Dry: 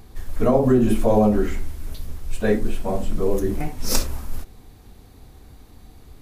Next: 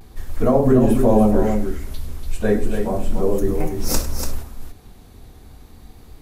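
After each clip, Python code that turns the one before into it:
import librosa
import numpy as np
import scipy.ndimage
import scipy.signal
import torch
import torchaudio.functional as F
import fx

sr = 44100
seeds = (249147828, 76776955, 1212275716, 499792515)

y = fx.dynamic_eq(x, sr, hz=3000.0, q=0.77, threshold_db=-43.0, ratio=4.0, max_db=-5)
y = fx.vibrato(y, sr, rate_hz=0.35, depth_cents=28.0)
y = fx.echo_multitap(y, sr, ms=(101, 289), db=(-15.0, -6.5))
y = y * librosa.db_to_amplitude(1.5)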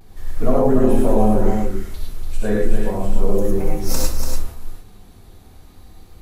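y = fx.rev_gated(x, sr, seeds[0], gate_ms=130, shape='rising', drr_db=-2.0)
y = y * librosa.db_to_amplitude(-4.5)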